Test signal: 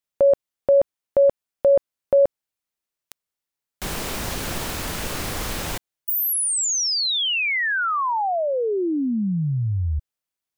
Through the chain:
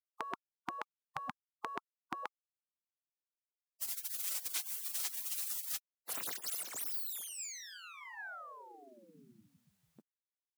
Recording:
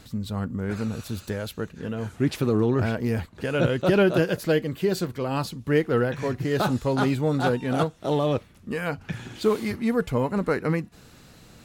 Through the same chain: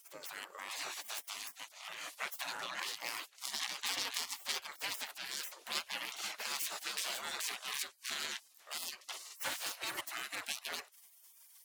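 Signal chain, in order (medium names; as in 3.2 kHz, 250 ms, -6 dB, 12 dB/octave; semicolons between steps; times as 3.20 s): tracing distortion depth 0.14 ms; spectral gate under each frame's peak -30 dB weak; high-pass 220 Hz 12 dB/octave; compression 2:1, threshold -45 dBFS; trim +7.5 dB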